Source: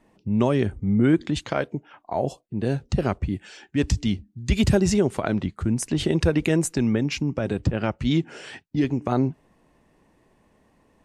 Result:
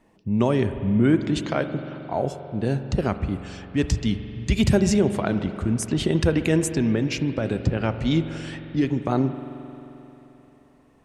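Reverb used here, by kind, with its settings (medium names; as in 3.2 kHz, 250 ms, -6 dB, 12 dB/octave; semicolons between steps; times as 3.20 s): spring tank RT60 3.5 s, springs 44 ms, chirp 40 ms, DRR 9.5 dB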